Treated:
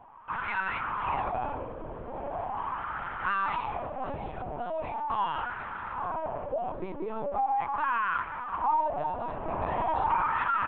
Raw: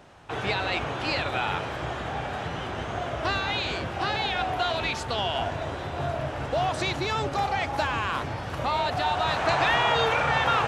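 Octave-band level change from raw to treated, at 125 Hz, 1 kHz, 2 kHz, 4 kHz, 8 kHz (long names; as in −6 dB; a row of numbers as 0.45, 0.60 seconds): −12.0 dB, −1.5 dB, −7.0 dB, −21.0 dB, below −35 dB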